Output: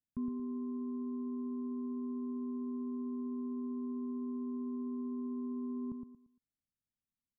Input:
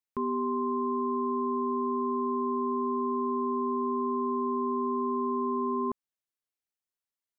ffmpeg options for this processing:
-af "firequalizer=gain_entry='entry(250,0);entry(380,-19);entry(690,-23)':delay=0.05:min_phase=1,alimiter=level_in=6.68:limit=0.0631:level=0:latency=1:release=227,volume=0.15,aecho=1:1:115|230|345|460:0.501|0.15|0.0451|0.0135,volume=2.82"

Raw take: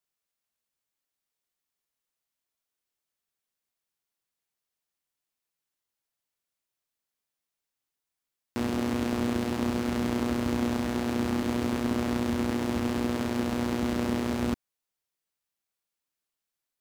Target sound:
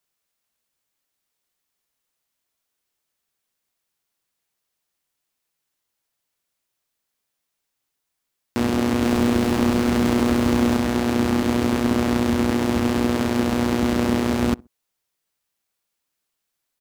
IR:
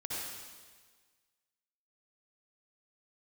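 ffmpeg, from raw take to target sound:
-filter_complex "[0:a]asettb=1/sr,asplit=3[s0][s1][s2];[s0]atrim=end=9.034[s3];[s1]atrim=start=9.03:end=10.77,asetpts=PTS-STARTPTS,afade=t=in:d=0.004:c=qsin,afade=t=out:st=1.736:d=0.004:c=qsin,aeval=exprs='val(0)+0.5*0.0168*sgn(val(0))':c=same[s4];[s2]atrim=start=10.766[s5];[s3][s4]acrossfade=d=0.004:c1=hsin:c2=qsin[s6];[s6][s5]acrossfade=d=0.004:c1=qsin:c2=hsin,asplit=2[s7][s8];[s8]adelay=64,lowpass=f=950:p=1,volume=0.0668,asplit=2[s9][s10];[s10]adelay=64,lowpass=f=950:p=1,volume=0.29[s11];[s7][s9][s11]amix=inputs=3:normalize=0,volume=2.51"

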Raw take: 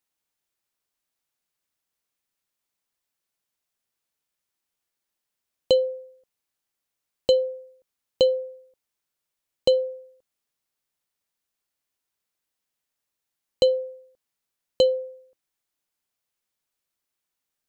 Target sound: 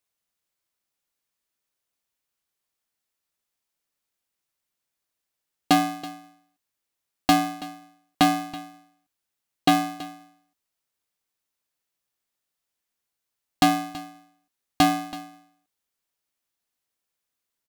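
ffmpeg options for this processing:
-af "aecho=1:1:328:0.15,aeval=exprs='val(0)*sgn(sin(2*PI*230*n/s))':c=same"

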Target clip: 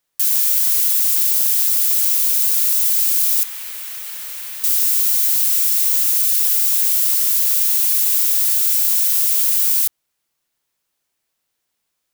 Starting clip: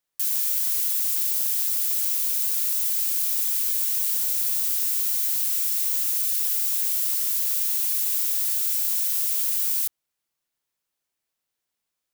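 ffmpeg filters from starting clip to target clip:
-filter_complex "[0:a]asettb=1/sr,asplit=3[s0][s1][s2];[s0]atrim=end=3.434[s3];[s1]atrim=start=3.43:end=4.64,asetpts=PTS-STARTPTS,afade=t=in:d=0.004:c=qsin,afade=t=out:st=1.206:d=0.004:c=qsin,acrossover=split=3000[s4][s5];[s5]acompressor=threshold=0.0158:ratio=4:attack=1:release=60[s6];[s4][s6]amix=inputs=2:normalize=0[s7];[s2]atrim=start=4.636[s8];[s3][s7]acrossfade=d=0.004:c1=hsin:c2=qsin[s9];[s9][s8]acrossfade=d=0.004:c1=qsin:c2=hsin,volume=2.51"

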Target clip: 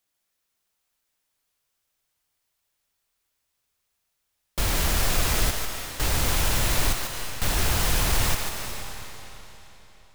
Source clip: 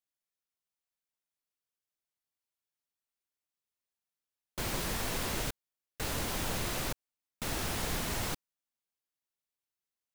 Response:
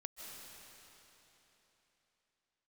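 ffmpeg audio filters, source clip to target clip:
-filter_complex "[0:a]aeval=exprs='0.1*sin(PI/2*4.47*val(0)/0.1)':c=same,asubboost=boost=3.5:cutoff=110,asplit=2[s0][s1];[1:a]atrim=start_sample=2205,lowshelf=f=250:g=-9,adelay=146[s2];[s1][s2]afir=irnorm=-1:irlink=0,volume=1.06[s3];[s0][s3]amix=inputs=2:normalize=0,volume=0.668"

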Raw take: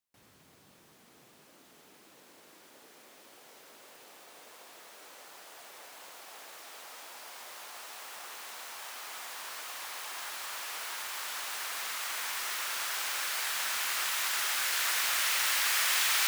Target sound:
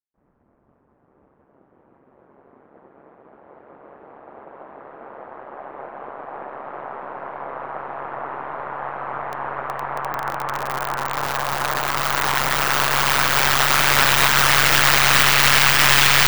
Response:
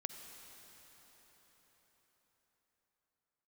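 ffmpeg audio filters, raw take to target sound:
-filter_complex "[0:a]agate=range=0.0224:threshold=0.00447:ratio=3:detection=peak,aeval=exprs='val(0)*sin(2*PI*69*n/s)':c=same,asplit=2[s0][s1];[s1]aeval=exprs='0.0237*(abs(mod(val(0)/0.0237+3,4)-2)-1)':c=same,volume=0.376[s2];[s0][s2]amix=inputs=2:normalize=0,aeval=exprs='0.15*(cos(1*acos(clip(val(0)/0.15,-1,1)))-cos(1*PI/2))+0.00841*(cos(3*acos(clip(val(0)/0.15,-1,1)))-cos(3*PI/2))+0.0168*(cos(4*acos(clip(val(0)/0.15,-1,1)))-cos(4*PI/2))+0.00422*(cos(5*acos(clip(val(0)/0.15,-1,1)))-cos(5*PI/2))+0.00596*(cos(7*acos(clip(val(0)/0.15,-1,1)))-cos(7*PI/2))':c=same,acrossover=split=1400[s3][s4];[s4]aeval=exprs='val(0)*gte(abs(val(0)),0.0251)':c=same[s5];[s3][s5]amix=inputs=2:normalize=0,equalizer=f=11000:w=0.44:g=-11,alimiter=level_in=21.1:limit=0.891:release=50:level=0:latency=1,volume=0.891"

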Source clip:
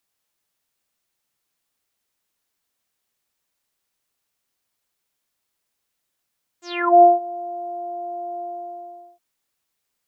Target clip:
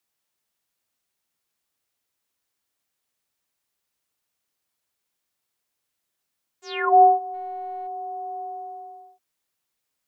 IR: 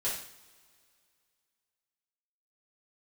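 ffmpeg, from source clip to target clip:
-filter_complex "[0:a]afreqshift=36,asplit=3[s0][s1][s2];[s0]afade=t=out:st=7.33:d=0.02[s3];[s1]aeval=exprs='0.0562*(cos(1*acos(clip(val(0)/0.0562,-1,1)))-cos(1*PI/2))+0.00158*(cos(2*acos(clip(val(0)/0.0562,-1,1)))-cos(2*PI/2))+0.00158*(cos(3*acos(clip(val(0)/0.0562,-1,1)))-cos(3*PI/2))+0.000447*(cos(6*acos(clip(val(0)/0.0562,-1,1)))-cos(6*PI/2))':c=same,afade=t=in:st=7.33:d=0.02,afade=t=out:st=7.86:d=0.02[s4];[s2]afade=t=in:st=7.86:d=0.02[s5];[s3][s4][s5]amix=inputs=3:normalize=0,volume=0.75"

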